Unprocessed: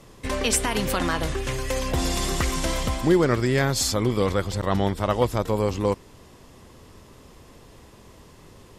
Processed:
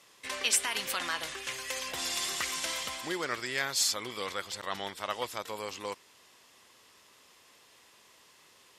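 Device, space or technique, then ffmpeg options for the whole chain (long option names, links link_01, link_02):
filter by subtraction: -filter_complex "[0:a]asplit=2[link_01][link_02];[link_02]lowpass=2600,volume=-1[link_03];[link_01][link_03]amix=inputs=2:normalize=0,volume=-4dB"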